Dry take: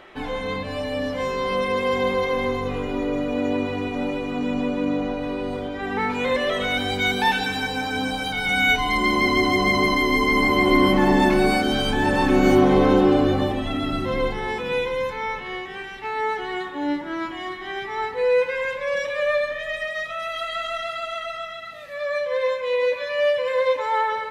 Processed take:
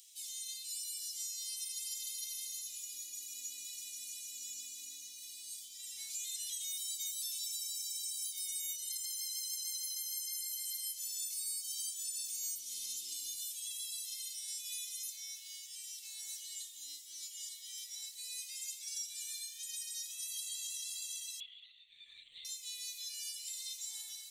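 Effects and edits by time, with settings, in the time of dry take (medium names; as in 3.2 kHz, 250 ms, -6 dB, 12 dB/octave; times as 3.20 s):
10.27–11.71 s: high-pass 550 Hz
13.39–14.60 s: high-pass 360 Hz
21.40–22.45 s: LPC vocoder at 8 kHz whisper
whole clip: inverse Chebyshev high-pass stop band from 1.6 kHz, stop band 70 dB; compression 6:1, threshold -56 dBFS; trim +18 dB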